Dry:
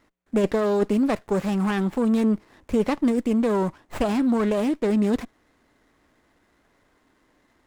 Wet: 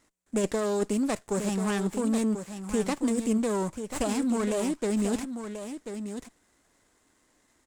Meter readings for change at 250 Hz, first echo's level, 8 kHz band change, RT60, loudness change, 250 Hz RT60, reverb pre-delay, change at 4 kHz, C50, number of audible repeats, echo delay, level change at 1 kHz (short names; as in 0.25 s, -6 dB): -5.5 dB, -9.0 dB, n/a, none, -6.0 dB, none, none, -1.0 dB, none, 1, 1.038 s, -5.0 dB